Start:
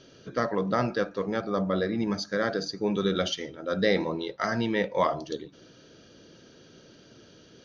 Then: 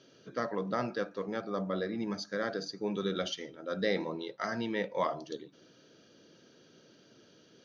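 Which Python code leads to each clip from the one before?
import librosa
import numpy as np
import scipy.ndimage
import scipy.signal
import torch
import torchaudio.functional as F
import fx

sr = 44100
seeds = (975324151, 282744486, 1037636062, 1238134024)

y = scipy.signal.sosfilt(scipy.signal.butter(2, 140.0, 'highpass', fs=sr, output='sos'), x)
y = F.gain(torch.from_numpy(y), -6.5).numpy()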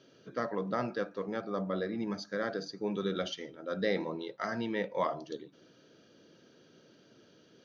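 y = fx.high_shelf(x, sr, hz=4400.0, db=-6.0)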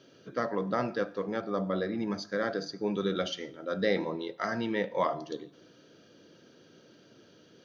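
y = fx.rev_fdn(x, sr, rt60_s=0.79, lf_ratio=1.0, hf_ratio=0.9, size_ms=59.0, drr_db=15.5)
y = F.gain(torch.from_numpy(y), 3.0).numpy()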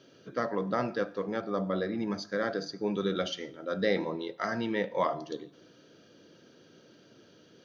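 y = x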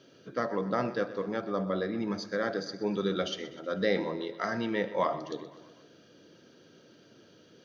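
y = fx.echo_feedback(x, sr, ms=125, feedback_pct=60, wet_db=-16)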